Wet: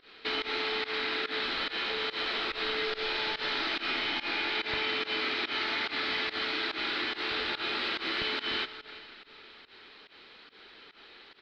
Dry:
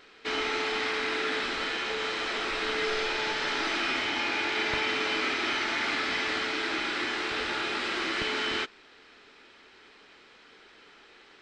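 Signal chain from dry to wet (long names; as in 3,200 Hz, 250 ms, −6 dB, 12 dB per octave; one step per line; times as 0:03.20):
single-tap delay 340 ms −22 dB
comb and all-pass reverb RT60 3.6 s, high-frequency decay 0.95×, pre-delay 5 ms, DRR 16.5 dB
downward compressor 2 to 1, threshold −33 dBFS, peak gain reduction 5 dB
high shelf with overshoot 5,400 Hz −9 dB, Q 3
fake sidechain pumping 143 BPM, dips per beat 1, −21 dB, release 113 ms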